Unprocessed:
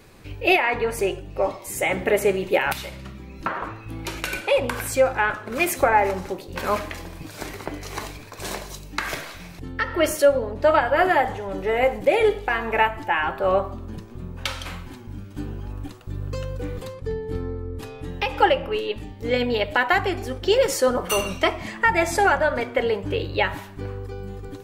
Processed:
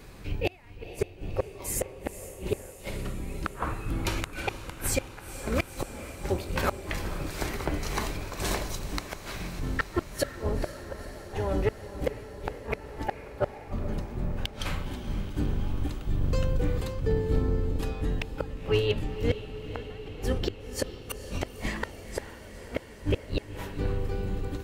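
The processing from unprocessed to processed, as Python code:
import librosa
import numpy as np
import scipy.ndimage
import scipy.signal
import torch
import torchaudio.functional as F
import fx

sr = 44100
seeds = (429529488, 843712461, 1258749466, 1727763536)

y = fx.octave_divider(x, sr, octaves=2, level_db=3.0)
y = fx.gate_flip(y, sr, shuts_db=-13.0, range_db=-37)
y = np.clip(y, -10.0 ** (-16.0 / 20.0), 10.0 ** (-16.0 / 20.0))
y = fx.echo_diffused(y, sr, ms=481, feedback_pct=73, wet_db=-12.5)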